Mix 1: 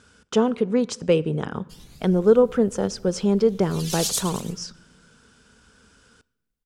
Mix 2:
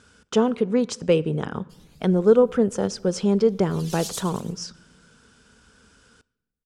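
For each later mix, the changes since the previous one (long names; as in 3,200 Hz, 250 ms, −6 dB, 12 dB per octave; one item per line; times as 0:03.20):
background −8.0 dB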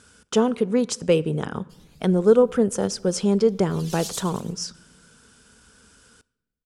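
speech: remove high-frequency loss of the air 62 metres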